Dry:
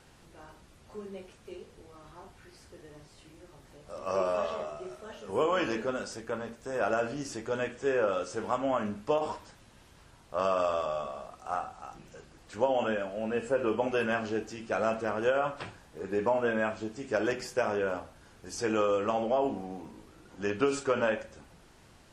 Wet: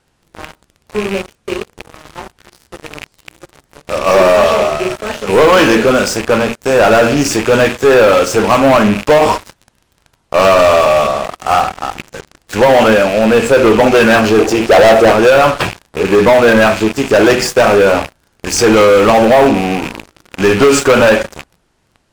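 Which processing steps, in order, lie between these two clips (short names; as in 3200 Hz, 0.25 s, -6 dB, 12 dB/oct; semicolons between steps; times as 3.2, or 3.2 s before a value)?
rattling part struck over -49 dBFS, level -36 dBFS; 14.39–15.12 band shelf 540 Hz +9 dB; sample leveller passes 5; gain +7 dB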